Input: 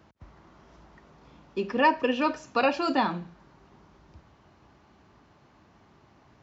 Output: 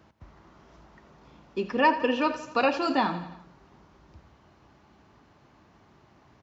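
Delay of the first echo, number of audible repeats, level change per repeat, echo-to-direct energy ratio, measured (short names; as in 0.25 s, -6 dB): 85 ms, 4, -4.5 dB, -12.5 dB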